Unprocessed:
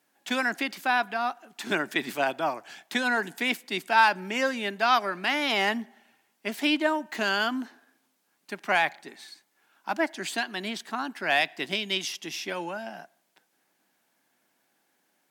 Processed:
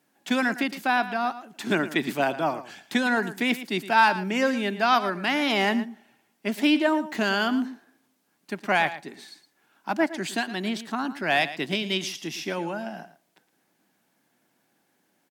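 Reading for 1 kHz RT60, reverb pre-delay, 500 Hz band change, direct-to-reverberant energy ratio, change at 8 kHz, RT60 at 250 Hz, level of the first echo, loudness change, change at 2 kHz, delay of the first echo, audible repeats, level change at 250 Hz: no reverb audible, no reverb audible, +3.0 dB, no reverb audible, 0.0 dB, no reverb audible, −14.0 dB, +2.0 dB, +0.5 dB, 113 ms, 1, +6.5 dB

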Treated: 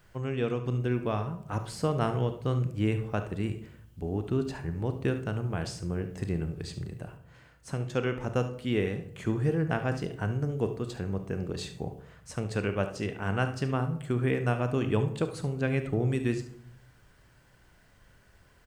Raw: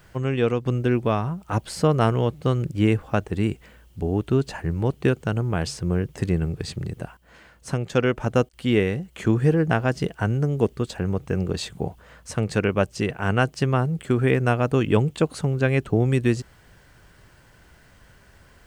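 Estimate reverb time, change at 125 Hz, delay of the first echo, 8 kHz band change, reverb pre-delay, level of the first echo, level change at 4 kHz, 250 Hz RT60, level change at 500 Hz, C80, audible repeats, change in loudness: 0.65 s, −7.0 dB, 72 ms, −8.0 dB, 29 ms, −13.5 dB, −8.0 dB, 0.80 s, −8.0 dB, 15.0 dB, 1, −7.5 dB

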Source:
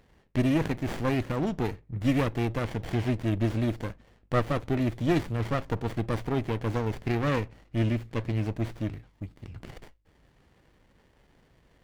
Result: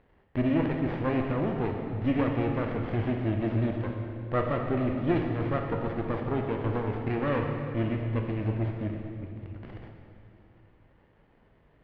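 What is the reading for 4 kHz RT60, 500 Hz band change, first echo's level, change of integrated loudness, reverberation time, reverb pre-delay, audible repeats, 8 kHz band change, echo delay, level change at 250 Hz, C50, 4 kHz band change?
2.3 s, +1.0 dB, no echo audible, −0.5 dB, 2.6 s, 13 ms, no echo audible, can't be measured, no echo audible, 0.0 dB, 3.0 dB, −6.5 dB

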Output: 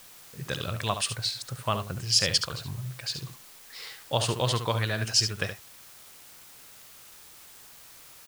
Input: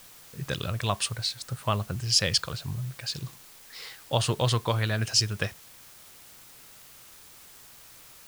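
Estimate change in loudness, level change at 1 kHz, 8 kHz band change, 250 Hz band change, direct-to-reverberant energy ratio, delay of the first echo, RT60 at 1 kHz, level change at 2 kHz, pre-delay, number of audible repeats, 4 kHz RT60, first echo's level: 0.0 dB, 0.0 dB, +0.5 dB, −2.0 dB, no reverb audible, 71 ms, no reverb audible, +0.5 dB, no reverb audible, 1, no reverb audible, −9.0 dB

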